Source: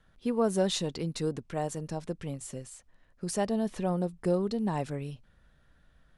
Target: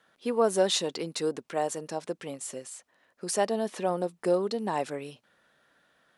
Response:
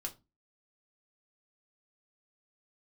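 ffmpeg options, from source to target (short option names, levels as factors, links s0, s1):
-af "highpass=360,volume=1.78"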